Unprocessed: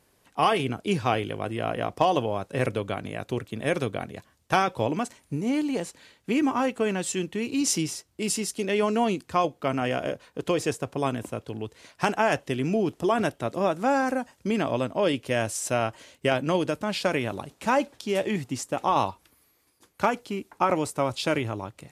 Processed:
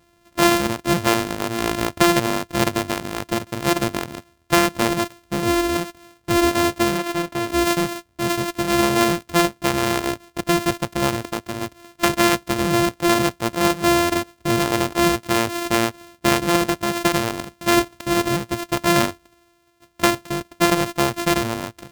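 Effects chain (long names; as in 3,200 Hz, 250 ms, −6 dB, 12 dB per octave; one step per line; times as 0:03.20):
samples sorted by size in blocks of 128 samples
0:06.97–0:07.48: bass and treble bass −4 dB, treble −4 dB
level +6 dB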